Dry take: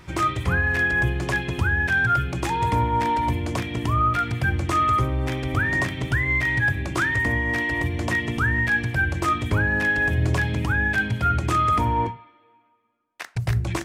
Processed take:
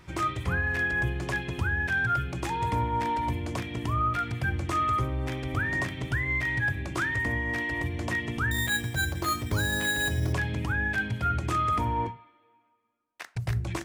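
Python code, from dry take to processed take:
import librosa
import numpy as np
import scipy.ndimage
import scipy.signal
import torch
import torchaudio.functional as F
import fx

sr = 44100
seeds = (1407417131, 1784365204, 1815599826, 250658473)

y = fx.resample_bad(x, sr, factor=8, down='filtered', up='hold', at=(8.51, 10.33))
y = y * 10.0 ** (-6.0 / 20.0)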